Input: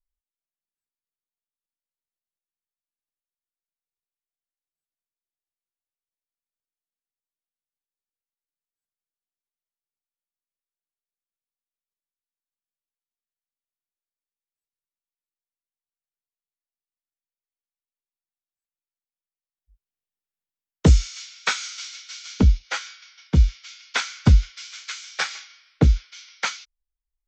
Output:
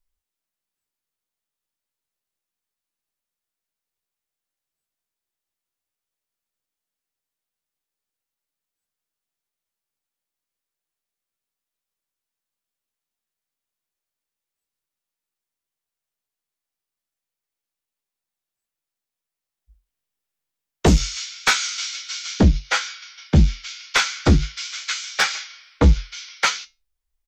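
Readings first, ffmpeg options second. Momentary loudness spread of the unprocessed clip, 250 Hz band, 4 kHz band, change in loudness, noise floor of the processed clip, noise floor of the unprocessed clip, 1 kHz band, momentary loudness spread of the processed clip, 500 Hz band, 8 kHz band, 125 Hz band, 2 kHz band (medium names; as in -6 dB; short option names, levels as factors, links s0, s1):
18 LU, +4.0 dB, +7.0 dB, +2.0 dB, under -85 dBFS, under -85 dBFS, +7.0 dB, 13 LU, +6.0 dB, +7.0 dB, 0.0 dB, +6.5 dB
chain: -filter_complex "[0:a]aeval=exprs='0.596*sin(PI/2*2.51*val(0)/0.596)':c=same,flanger=delay=8.8:depth=3.6:regen=-71:speed=0.32:shape=sinusoidal,asplit=2[s0][s1];[s1]adelay=14,volume=0.282[s2];[s0][s2]amix=inputs=2:normalize=0"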